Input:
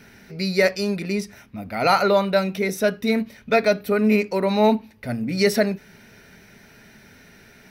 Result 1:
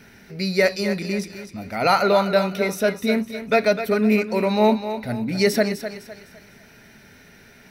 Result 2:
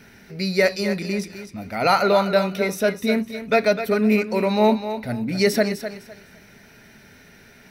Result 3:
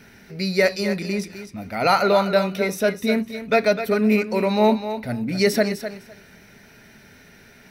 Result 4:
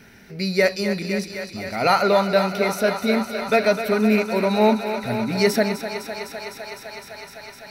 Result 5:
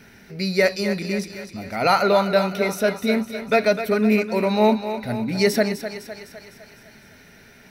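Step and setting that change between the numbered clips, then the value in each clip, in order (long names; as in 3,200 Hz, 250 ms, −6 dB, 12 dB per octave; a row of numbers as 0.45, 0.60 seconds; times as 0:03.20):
feedback echo with a high-pass in the loop, feedback: 37, 25, 17, 87, 58%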